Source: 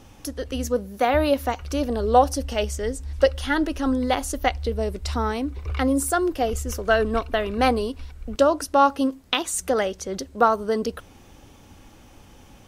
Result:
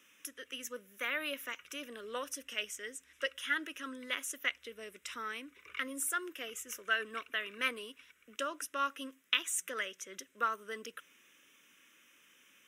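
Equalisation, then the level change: differentiator; three-band isolator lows -21 dB, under 150 Hz, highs -17 dB, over 5.2 kHz; static phaser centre 1.9 kHz, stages 4; +7.0 dB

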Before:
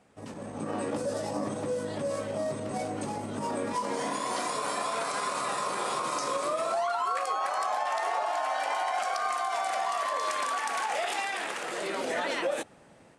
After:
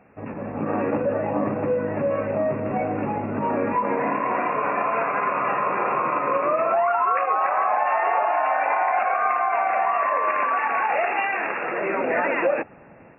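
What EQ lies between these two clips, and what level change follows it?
brick-wall FIR low-pass 2.8 kHz; +8.5 dB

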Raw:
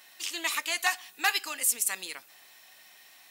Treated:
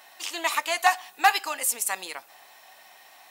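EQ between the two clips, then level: peaking EQ 790 Hz +12.5 dB 1.5 oct; 0.0 dB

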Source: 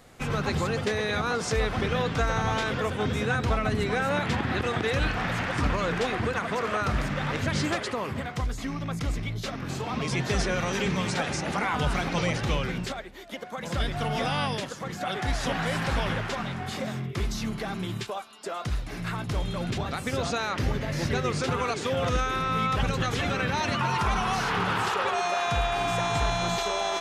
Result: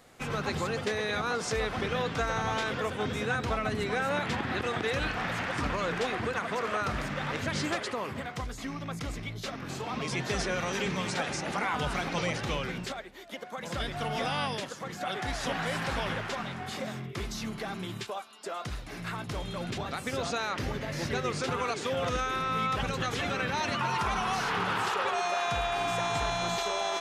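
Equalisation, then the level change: bass shelf 150 Hz -8 dB; -2.5 dB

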